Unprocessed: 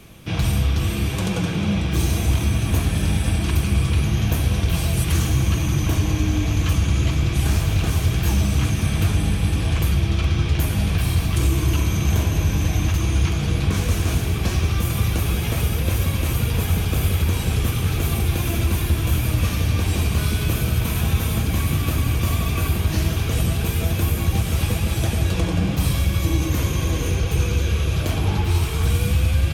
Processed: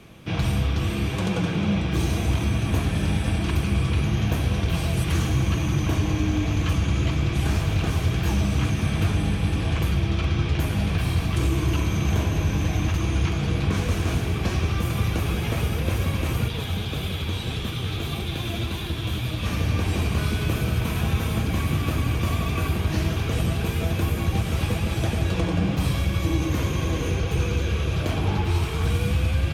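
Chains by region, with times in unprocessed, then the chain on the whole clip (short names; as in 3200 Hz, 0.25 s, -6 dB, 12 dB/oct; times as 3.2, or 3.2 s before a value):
16.48–19.46 bell 3600 Hz +10.5 dB 0.52 oct + flange 1.7 Hz, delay 4.7 ms, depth 5.7 ms, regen +56%
whole clip: LPF 3300 Hz 6 dB/oct; low shelf 75 Hz -8.5 dB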